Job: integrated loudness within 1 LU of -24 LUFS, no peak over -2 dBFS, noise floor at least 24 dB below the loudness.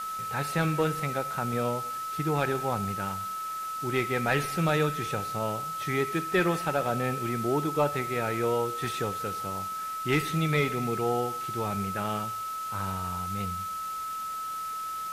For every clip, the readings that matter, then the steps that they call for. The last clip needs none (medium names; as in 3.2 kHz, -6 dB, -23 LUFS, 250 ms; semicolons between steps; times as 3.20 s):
steady tone 1.3 kHz; tone level -32 dBFS; noise floor -35 dBFS; noise floor target -54 dBFS; loudness -29.5 LUFS; peak level -13.0 dBFS; loudness target -24.0 LUFS
-> band-stop 1.3 kHz, Q 30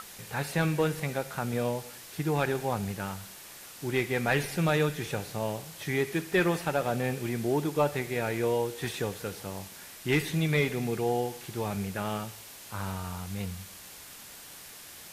steady tone not found; noise floor -47 dBFS; noise floor target -55 dBFS
-> noise reduction 8 dB, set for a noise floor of -47 dBFS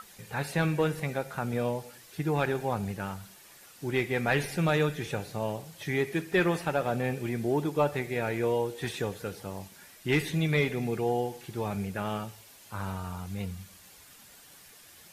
noise floor -54 dBFS; noise floor target -55 dBFS
-> noise reduction 6 dB, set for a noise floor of -54 dBFS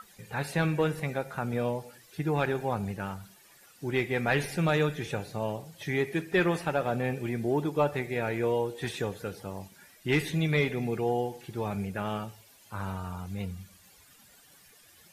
noise floor -58 dBFS; loudness -30.5 LUFS; peak level -14.0 dBFS; loudness target -24.0 LUFS
-> trim +6.5 dB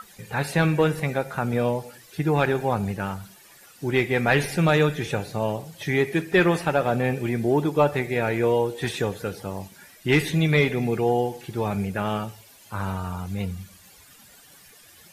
loudness -24.0 LUFS; peak level -7.5 dBFS; noise floor -51 dBFS